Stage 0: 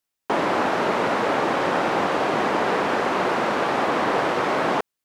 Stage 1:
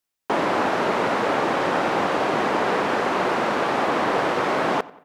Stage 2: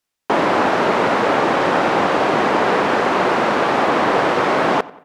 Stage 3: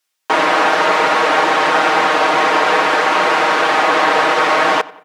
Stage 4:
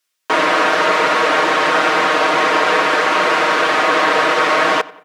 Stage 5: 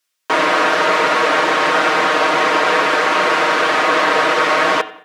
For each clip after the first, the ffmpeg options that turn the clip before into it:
ffmpeg -i in.wav -filter_complex "[0:a]asplit=2[link_01][link_02];[link_02]adelay=91,lowpass=frequency=3700:poles=1,volume=-20dB,asplit=2[link_03][link_04];[link_04]adelay=91,lowpass=frequency=3700:poles=1,volume=0.5,asplit=2[link_05][link_06];[link_06]adelay=91,lowpass=frequency=3700:poles=1,volume=0.5,asplit=2[link_07][link_08];[link_08]adelay=91,lowpass=frequency=3700:poles=1,volume=0.5[link_09];[link_01][link_03][link_05][link_07][link_09]amix=inputs=5:normalize=0" out.wav
ffmpeg -i in.wav -af "highshelf=frequency=11000:gain=-8.5,volume=5.5dB" out.wav
ffmpeg -i in.wav -af "highpass=frequency=1100:poles=1,aecho=1:1:6.4:0.79,volume=5.5dB" out.wav
ffmpeg -i in.wav -af "bandreject=frequency=830:width=5.3" out.wav
ffmpeg -i in.wav -af "bandreject=frequency=108.5:width_type=h:width=4,bandreject=frequency=217:width_type=h:width=4,bandreject=frequency=325.5:width_type=h:width=4,bandreject=frequency=434:width_type=h:width=4,bandreject=frequency=542.5:width_type=h:width=4,bandreject=frequency=651:width_type=h:width=4,bandreject=frequency=759.5:width_type=h:width=4,bandreject=frequency=868:width_type=h:width=4,bandreject=frequency=976.5:width_type=h:width=4,bandreject=frequency=1085:width_type=h:width=4,bandreject=frequency=1193.5:width_type=h:width=4,bandreject=frequency=1302:width_type=h:width=4,bandreject=frequency=1410.5:width_type=h:width=4,bandreject=frequency=1519:width_type=h:width=4,bandreject=frequency=1627.5:width_type=h:width=4,bandreject=frequency=1736:width_type=h:width=4,bandreject=frequency=1844.5:width_type=h:width=4,bandreject=frequency=1953:width_type=h:width=4,bandreject=frequency=2061.5:width_type=h:width=4,bandreject=frequency=2170:width_type=h:width=4,bandreject=frequency=2278.5:width_type=h:width=4,bandreject=frequency=2387:width_type=h:width=4,bandreject=frequency=2495.5:width_type=h:width=4,bandreject=frequency=2604:width_type=h:width=4,bandreject=frequency=2712.5:width_type=h:width=4,bandreject=frequency=2821:width_type=h:width=4,bandreject=frequency=2929.5:width_type=h:width=4,bandreject=frequency=3038:width_type=h:width=4,bandreject=frequency=3146.5:width_type=h:width=4,bandreject=frequency=3255:width_type=h:width=4,bandreject=frequency=3363.5:width_type=h:width=4,bandreject=frequency=3472:width_type=h:width=4,bandreject=frequency=3580.5:width_type=h:width=4,bandreject=frequency=3689:width_type=h:width=4,bandreject=frequency=3797.5:width_type=h:width=4,bandreject=frequency=3906:width_type=h:width=4,bandreject=frequency=4014.5:width_type=h:width=4,bandreject=frequency=4123:width_type=h:width=4" out.wav

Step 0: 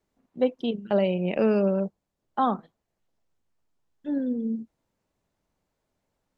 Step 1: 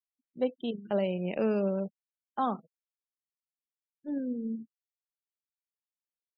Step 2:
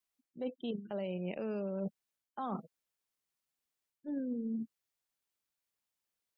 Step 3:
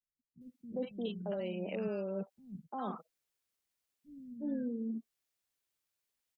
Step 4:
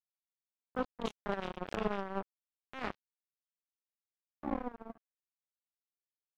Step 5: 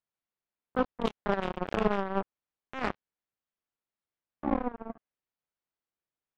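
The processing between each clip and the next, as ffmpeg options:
ffmpeg -i in.wav -af "afftfilt=real='re*gte(hypot(re,im),0.00708)':imag='im*gte(hypot(re,im),0.00708)':win_size=1024:overlap=0.75,volume=-6dB" out.wav
ffmpeg -i in.wav -af "alimiter=level_in=0.5dB:limit=-24dB:level=0:latency=1:release=119,volume=-0.5dB,areverse,acompressor=threshold=-43dB:ratio=5,areverse,volume=7dB" out.wav
ffmpeg -i in.wav -filter_complex "[0:a]acrossover=split=180|1000[link_01][link_02][link_03];[link_02]adelay=350[link_04];[link_03]adelay=410[link_05];[link_01][link_04][link_05]amix=inputs=3:normalize=0,volume=2dB" out.wav
ffmpeg -i in.wav -af "acrusher=bits=4:mix=0:aa=0.5,volume=4.5dB" out.wav
ffmpeg -i in.wav -af "adynamicsmooth=sensitivity=4:basefreq=2700,volume=7.5dB" out.wav

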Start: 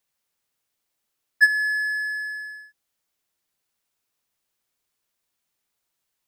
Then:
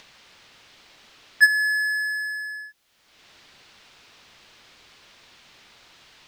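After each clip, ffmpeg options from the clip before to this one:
ffmpeg -i in.wav -filter_complex "[0:a]highshelf=frequency=2600:gain=8.5,acrossover=split=4500[link_01][link_02];[link_01]acompressor=mode=upward:threshold=-27dB:ratio=2.5[link_03];[link_03][link_02]amix=inputs=2:normalize=0,volume=-1.5dB" out.wav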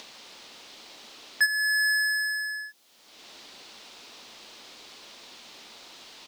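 ffmpeg -i in.wav -af "firequalizer=gain_entry='entry(120,0);entry(230,13);entry(880,12);entry(1600,6);entry(3900,13)':delay=0.05:min_phase=1,alimiter=limit=-6dB:level=0:latency=1:release=456,volume=-6dB" out.wav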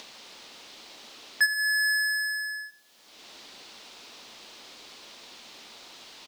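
ffmpeg -i in.wav -filter_complex "[0:a]asplit=2[link_01][link_02];[link_02]adelay=126,lowpass=frequency=4400:poles=1,volume=-17dB,asplit=2[link_03][link_04];[link_04]adelay=126,lowpass=frequency=4400:poles=1,volume=0.31,asplit=2[link_05][link_06];[link_06]adelay=126,lowpass=frequency=4400:poles=1,volume=0.31[link_07];[link_01][link_03][link_05][link_07]amix=inputs=4:normalize=0" out.wav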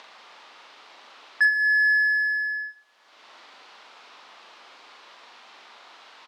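ffmpeg -i in.wav -filter_complex "[0:a]bandpass=frequency=1200:width_type=q:width=1.2:csg=0,asplit=2[link_01][link_02];[link_02]adelay=41,volume=-5dB[link_03];[link_01][link_03]amix=inputs=2:normalize=0,volume=5dB" out.wav

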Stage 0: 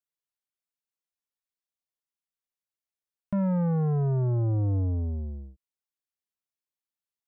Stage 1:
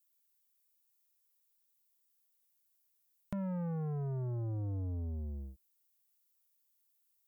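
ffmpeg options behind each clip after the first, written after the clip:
ffmpeg -i in.wav -af "aemphasis=mode=production:type=75fm,acompressor=threshold=-39dB:ratio=4" out.wav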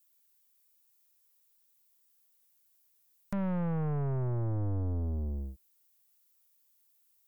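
ffmpeg -i in.wav -af "aeval=exprs='0.0531*(cos(1*acos(clip(val(0)/0.0531,-1,1)))-cos(1*PI/2))+0.0119*(cos(5*acos(clip(val(0)/0.0531,-1,1)))-cos(5*PI/2))+0.00944*(cos(6*acos(clip(val(0)/0.0531,-1,1)))-cos(6*PI/2))':channel_layout=same" out.wav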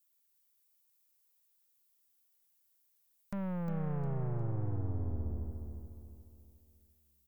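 ffmpeg -i in.wav -af "aecho=1:1:356|712|1068|1424|1780:0.531|0.223|0.0936|0.0393|0.0165,volume=-5dB" out.wav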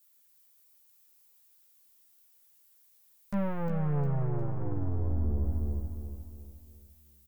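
ffmpeg -i in.wav -filter_complex "[0:a]alimiter=level_in=10dB:limit=-24dB:level=0:latency=1:release=27,volume=-10dB,asplit=2[link_01][link_02];[link_02]adelay=14,volume=-4dB[link_03];[link_01][link_03]amix=inputs=2:normalize=0,volume=8.5dB" out.wav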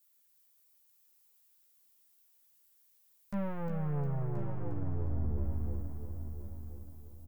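ffmpeg -i in.wav -af "aecho=1:1:1029|2058|3087:0.299|0.0866|0.0251,volume=-4.5dB" out.wav

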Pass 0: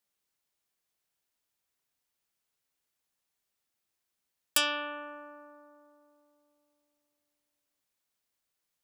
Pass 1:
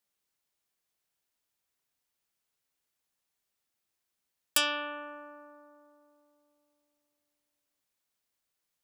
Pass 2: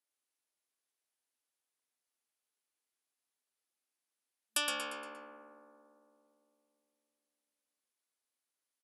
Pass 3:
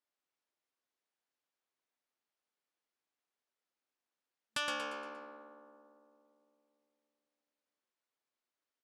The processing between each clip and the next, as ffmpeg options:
ffmpeg -i in.wav -af anull out.wav
ffmpeg -i in.wav -filter_complex "[0:a]asplit=6[link_01][link_02][link_03][link_04][link_05][link_06];[link_02]adelay=117,afreqshift=-69,volume=-5dB[link_07];[link_03]adelay=234,afreqshift=-138,volume=-12.1dB[link_08];[link_04]adelay=351,afreqshift=-207,volume=-19.3dB[link_09];[link_05]adelay=468,afreqshift=-276,volume=-26.4dB[link_10];[link_06]adelay=585,afreqshift=-345,volume=-33.5dB[link_11];[link_01][link_07][link_08][link_09][link_10][link_11]amix=inputs=6:normalize=0,afftfilt=real='re*between(b*sr/4096,220,12000)':imag='im*between(b*sr/4096,220,12000)':win_size=4096:overlap=0.75,aexciter=amount=1.1:drive=6.8:freq=9400,volume=-7dB" out.wav
ffmpeg -i in.wav -filter_complex "[0:a]acrossover=split=400|1900[link_01][link_02][link_03];[link_03]aeval=exprs='max(val(0),0)':channel_layout=same[link_04];[link_01][link_02][link_04]amix=inputs=3:normalize=0,highpass=180,lowpass=6000,volume=2dB" out.wav

